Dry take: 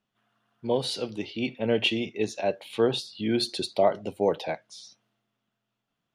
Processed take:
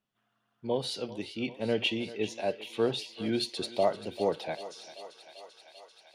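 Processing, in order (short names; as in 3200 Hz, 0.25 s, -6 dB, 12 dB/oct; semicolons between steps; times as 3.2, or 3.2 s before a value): thinning echo 0.391 s, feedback 81%, high-pass 440 Hz, level -14 dB; gain -4.5 dB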